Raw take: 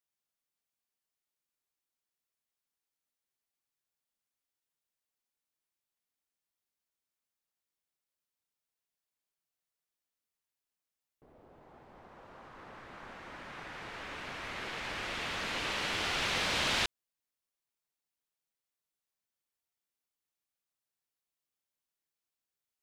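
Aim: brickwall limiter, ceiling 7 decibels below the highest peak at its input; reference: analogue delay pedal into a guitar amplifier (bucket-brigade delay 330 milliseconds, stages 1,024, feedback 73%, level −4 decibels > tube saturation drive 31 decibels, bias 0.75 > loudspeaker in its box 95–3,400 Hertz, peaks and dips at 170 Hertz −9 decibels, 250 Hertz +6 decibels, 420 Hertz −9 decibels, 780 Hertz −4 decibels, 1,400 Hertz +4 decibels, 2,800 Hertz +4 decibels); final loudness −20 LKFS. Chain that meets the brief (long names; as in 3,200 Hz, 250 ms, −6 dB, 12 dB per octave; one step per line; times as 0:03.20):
brickwall limiter −25 dBFS
bucket-brigade delay 330 ms, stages 1,024, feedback 73%, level −4 dB
tube saturation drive 31 dB, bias 0.75
loudspeaker in its box 95–3,400 Hz, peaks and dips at 170 Hz −9 dB, 250 Hz +6 dB, 420 Hz −9 dB, 780 Hz −4 dB, 1,400 Hz +4 dB, 2,800 Hz +4 dB
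level +20.5 dB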